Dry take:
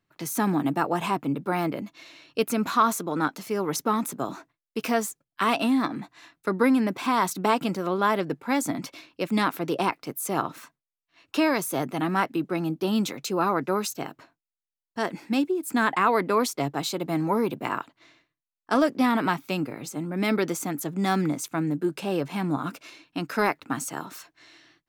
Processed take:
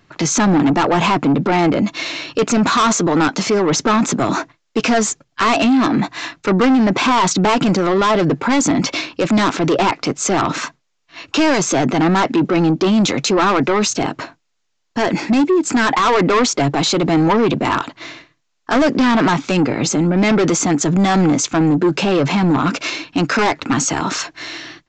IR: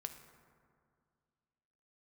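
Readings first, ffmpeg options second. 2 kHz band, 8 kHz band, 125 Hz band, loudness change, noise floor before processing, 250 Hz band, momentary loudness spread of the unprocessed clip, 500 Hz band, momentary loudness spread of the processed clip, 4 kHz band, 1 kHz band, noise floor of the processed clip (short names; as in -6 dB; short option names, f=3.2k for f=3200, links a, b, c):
+10.5 dB, +14.0 dB, +13.0 dB, +10.5 dB, under -85 dBFS, +11.5 dB, 12 LU, +10.5 dB, 8 LU, +13.5 dB, +9.0 dB, -69 dBFS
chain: -af "aresample=16000,asoftclip=type=tanh:threshold=-26dB,aresample=44100,alimiter=level_in=32.5dB:limit=-1dB:release=50:level=0:latency=1,volume=-9dB"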